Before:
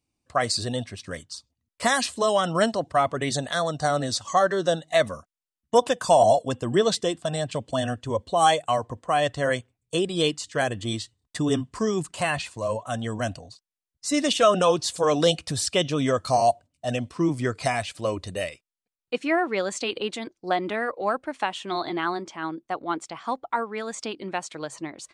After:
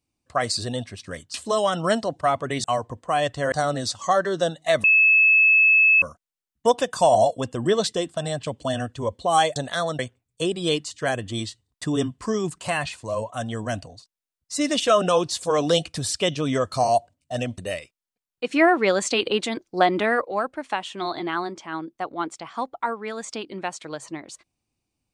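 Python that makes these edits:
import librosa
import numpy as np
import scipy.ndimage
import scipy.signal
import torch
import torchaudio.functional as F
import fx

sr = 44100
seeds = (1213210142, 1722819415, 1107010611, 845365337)

y = fx.edit(x, sr, fx.cut(start_s=1.34, length_s=0.71),
    fx.swap(start_s=3.35, length_s=0.43, other_s=8.64, other_length_s=0.88),
    fx.insert_tone(at_s=5.1, length_s=1.18, hz=2600.0, db=-12.5),
    fx.cut(start_s=17.11, length_s=1.17),
    fx.clip_gain(start_s=19.19, length_s=1.76, db=6.0), tone=tone)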